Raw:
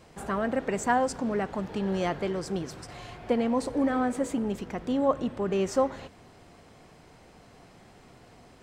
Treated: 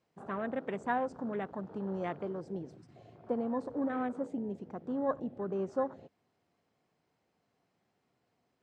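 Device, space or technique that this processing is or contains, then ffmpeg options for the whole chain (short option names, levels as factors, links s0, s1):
over-cleaned archive recording: -af "highpass=110,lowpass=7500,afwtdn=0.0141,volume=0.422"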